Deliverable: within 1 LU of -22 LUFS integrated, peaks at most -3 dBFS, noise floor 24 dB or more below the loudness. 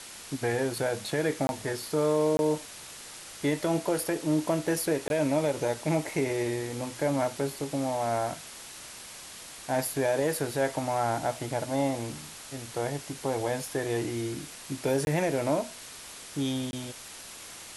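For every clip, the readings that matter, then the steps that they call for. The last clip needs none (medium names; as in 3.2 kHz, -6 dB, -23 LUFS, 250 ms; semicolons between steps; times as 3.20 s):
dropouts 5; longest dropout 21 ms; noise floor -45 dBFS; noise floor target -54 dBFS; loudness -29.5 LUFS; peak level -15.0 dBFS; loudness target -22.0 LUFS
-> interpolate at 1.47/2.37/5.08/15.05/16.71 s, 21 ms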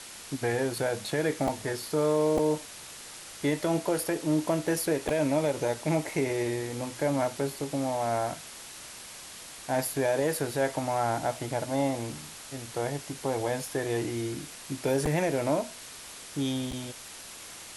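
dropouts 0; noise floor -45 dBFS; noise floor target -54 dBFS
-> noise reduction 9 dB, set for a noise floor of -45 dBFS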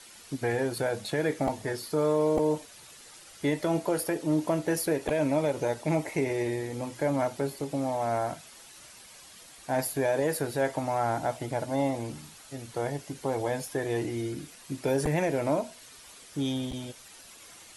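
noise floor -51 dBFS; noise floor target -54 dBFS
-> noise reduction 6 dB, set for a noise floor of -51 dBFS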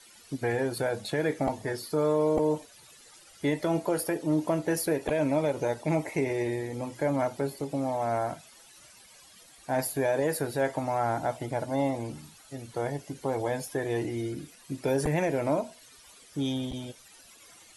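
noise floor -55 dBFS; loudness -30.0 LUFS; peak level -15.0 dBFS; loudness target -22.0 LUFS
-> trim +8 dB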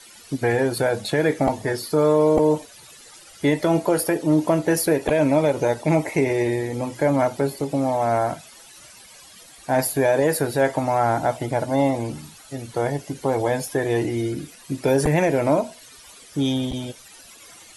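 loudness -22.0 LUFS; peak level -7.0 dBFS; noise floor -47 dBFS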